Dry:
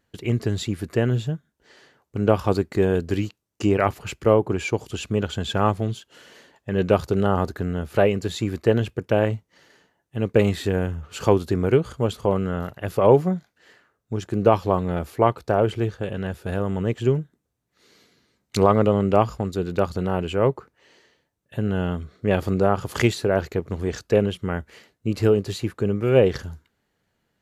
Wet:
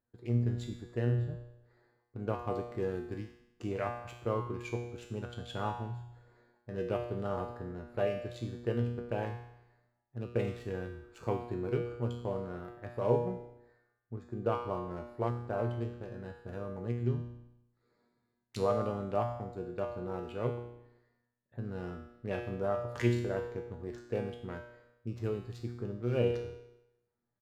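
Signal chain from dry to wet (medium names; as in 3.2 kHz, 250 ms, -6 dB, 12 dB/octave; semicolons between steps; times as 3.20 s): local Wiener filter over 15 samples; feedback comb 120 Hz, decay 0.83 s, harmonics all, mix 90%; on a send: frequency-shifting echo 95 ms, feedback 56%, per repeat -31 Hz, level -24 dB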